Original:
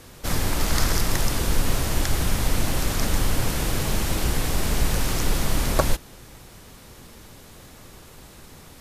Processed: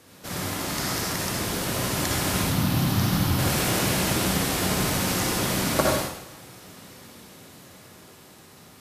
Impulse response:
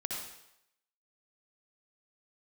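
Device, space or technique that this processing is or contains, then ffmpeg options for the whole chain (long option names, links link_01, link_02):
far laptop microphone: -filter_complex "[0:a]asettb=1/sr,asplit=3[link_01][link_02][link_03];[link_01]atrim=end=2.424[link_04];[link_02]atrim=start=2.42:end=3.39,asetpts=PTS-STARTPTS,afade=type=in:duration=0.004:curve=qsin,afade=type=out:start_time=0.966:duration=0.004:curve=qsin,equalizer=frequency=125:width_type=o:width=1:gain=8,equalizer=frequency=500:width_type=o:width=1:gain=-8,equalizer=frequency=2000:width_type=o:width=1:gain=-6,equalizer=frequency=8000:width_type=o:width=1:gain=-10[link_05];[link_03]atrim=start=3.386[link_06];[link_04][link_05]acrossfade=duration=0.004:curve1=hsin:curve2=qsin[link_07];[link_07][link_06]acrossfade=duration=0.004:curve1=qsin:curve2=hsin[link_08];[1:a]atrim=start_sample=2205[link_09];[link_08][link_09]afir=irnorm=-1:irlink=0,highpass=120,dynaudnorm=framelen=380:gausssize=11:maxgain=9dB,volume=-4.5dB"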